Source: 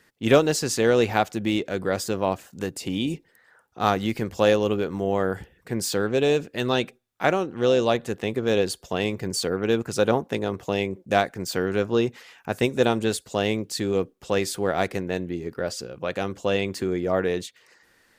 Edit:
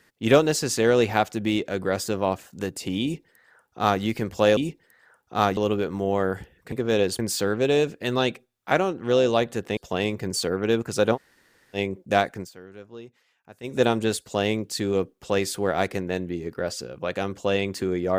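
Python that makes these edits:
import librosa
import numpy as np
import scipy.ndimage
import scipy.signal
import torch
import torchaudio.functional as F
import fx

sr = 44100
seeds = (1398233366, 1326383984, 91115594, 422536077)

y = fx.edit(x, sr, fx.duplicate(start_s=3.02, length_s=1.0, to_s=4.57),
    fx.move(start_s=8.3, length_s=0.47, to_s=5.72),
    fx.room_tone_fill(start_s=10.15, length_s=0.61, crossfade_s=0.06),
    fx.fade_down_up(start_s=11.37, length_s=1.39, db=-19.5, fade_s=0.13), tone=tone)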